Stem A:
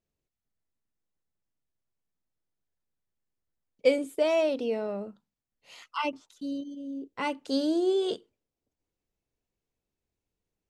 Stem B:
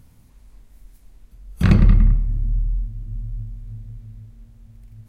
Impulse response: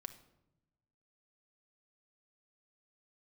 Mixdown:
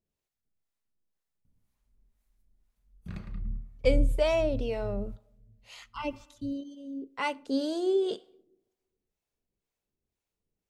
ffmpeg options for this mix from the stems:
-filter_complex "[0:a]volume=-1dB,asplit=3[a][b][c];[b]volume=-4dB[d];[1:a]adelay=1450,volume=-3dB,asplit=2[e][f];[f]volume=-18dB[g];[c]apad=whole_len=288122[h];[e][h]sidechaingate=range=-25dB:threshold=-46dB:ratio=16:detection=peak[i];[2:a]atrim=start_sample=2205[j];[d][g]amix=inputs=2:normalize=0[k];[k][j]afir=irnorm=-1:irlink=0[l];[a][i][l]amix=inputs=3:normalize=0,acrossover=split=540[m][n];[m]aeval=exprs='val(0)*(1-0.7/2+0.7/2*cos(2*PI*2*n/s))':c=same[o];[n]aeval=exprs='val(0)*(1-0.7/2-0.7/2*cos(2*PI*2*n/s))':c=same[p];[o][p]amix=inputs=2:normalize=0"

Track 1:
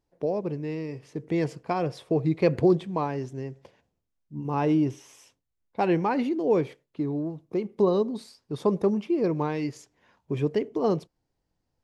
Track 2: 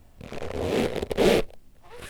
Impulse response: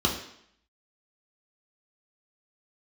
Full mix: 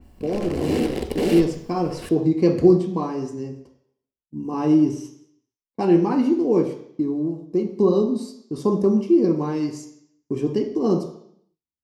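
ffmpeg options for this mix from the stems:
-filter_complex "[0:a]agate=range=-27dB:threshold=-46dB:ratio=16:detection=peak,highshelf=f=4.6k:t=q:w=1.5:g=9,volume=-4dB,asplit=2[a][b];[b]volume=-9.5dB[c];[1:a]alimiter=limit=-18.5dB:level=0:latency=1:release=57,adynamicequalizer=threshold=0.00282:dfrequency=4300:dqfactor=0.7:tfrequency=4300:tqfactor=0.7:attack=5:release=100:ratio=0.375:range=2.5:mode=boostabove:tftype=highshelf,volume=0.5dB,asplit=2[d][e];[e]volume=-15dB[f];[2:a]atrim=start_sample=2205[g];[c][f]amix=inputs=2:normalize=0[h];[h][g]afir=irnorm=-1:irlink=0[i];[a][d][i]amix=inputs=3:normalize=0"

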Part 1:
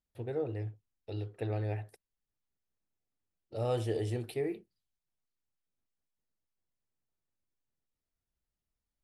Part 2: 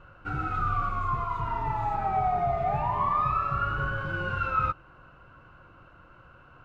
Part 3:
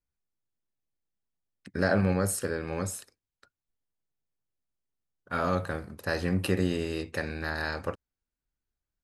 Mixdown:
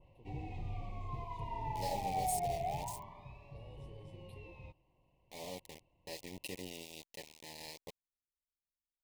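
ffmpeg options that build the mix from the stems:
-filter_complex "[0:a]acompressor=threshold=-37dB:ratio=6,volume=-18.5dB[a];[1:a]volume=-9.5dB,afade=t=out:st=2.64:d=0.38:silence=0.375837[b];[2:a]lowshelf=f=370:g=-12,aecho=1:1:6.8:0.42,aeval=exprs='val(0)*gte(abs(val(0)),0.0251)':c=same,volume=-12dB[c];[a][b][c]amix=inputs=3:normalize=0,asuperstop=centerf=1400:order=8:qfactor=1.4,adynamicequalizer=threshold=0.00224:dfrequency=2800:dqfactor=0.7:tfrequency=2800:tqfactor=0.7:attack=5:release=100:ratio=0.375:range=2.5:mode=boostabove:tftype=highshelf"

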